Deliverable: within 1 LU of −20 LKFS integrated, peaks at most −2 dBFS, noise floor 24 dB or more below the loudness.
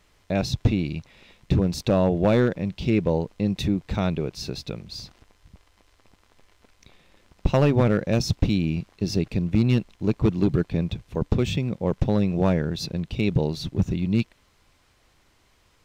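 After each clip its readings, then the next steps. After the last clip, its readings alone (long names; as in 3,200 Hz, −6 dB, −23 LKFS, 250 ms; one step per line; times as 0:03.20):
share of clipped samples 0.7%; peaks flattened at −12.0 dBFS; integrated loudness −24.5 LKFS; sample peak −12.0 dBFS; target loudness −20.0 LKFS
→ clipped peaks rebuilt −12 dBFS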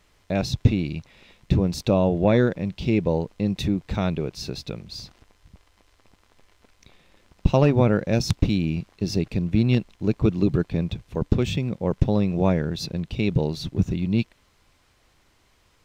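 share of clipped samples 0.0%; integrated loudness −24.0 LKFS; sample peak −3.0 dBFS; target loudness −20.0 LKFS
→ level +4 dB
brickwall limiter −2 dBFS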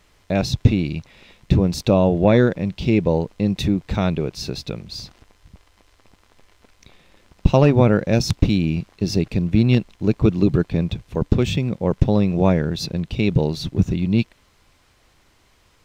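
integrated loudness −20.0 LKFS; sample peak −2.0 dBFS; background noise floor −58 dBFS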